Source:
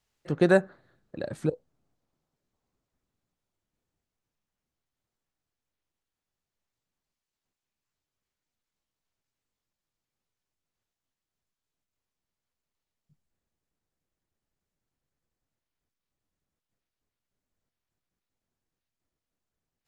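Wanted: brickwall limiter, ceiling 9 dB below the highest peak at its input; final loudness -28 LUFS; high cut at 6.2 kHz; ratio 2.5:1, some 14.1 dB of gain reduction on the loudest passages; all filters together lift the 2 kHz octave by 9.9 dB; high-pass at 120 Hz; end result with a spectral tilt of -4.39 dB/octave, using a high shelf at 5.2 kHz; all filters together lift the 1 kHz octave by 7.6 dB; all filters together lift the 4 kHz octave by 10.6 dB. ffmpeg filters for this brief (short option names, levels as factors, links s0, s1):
-af "highpass=120,lowpass=6200,equalizer=f=1000:t=o:g=8.5,equalizer=f=2000:t=o:g=7.5,equalizer=f=4000:t=o:g=7.5,highshelf=f=5200:g=6,acompressor=threshold=0.0224:ratio=2.5,volume=4.22,alimiter=limit=0.251:level=0:latency=1"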